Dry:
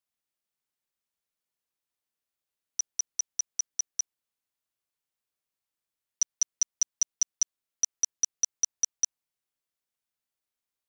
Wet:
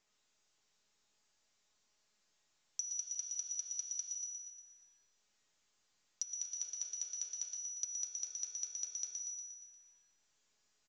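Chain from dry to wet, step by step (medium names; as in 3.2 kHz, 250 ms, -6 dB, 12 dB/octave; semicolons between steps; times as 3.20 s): companding laws mixed up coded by mu; high-pass 77 Hz 24 dB/octave; feedback comb 210 Hz, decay 0.64 s, harmonics all, mix 90%; flange 0.35 Hz, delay 8.5 ms, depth 2.9 ms, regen -87%; low-pass that closes with the level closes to 2.8 kHz, closed at -41 dBFS; tone controls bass -13 dB, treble +12 dB; feedback delay 118 ms, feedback 58%, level -7 dB; compression 12:1, threshold -43 dBFS, peak gain reduction 11 dB; 4.00–6.55 s: bass shelf 460 Hz -11.5 dB; trim +7 dB; µ-law 128 kbps 16 kHz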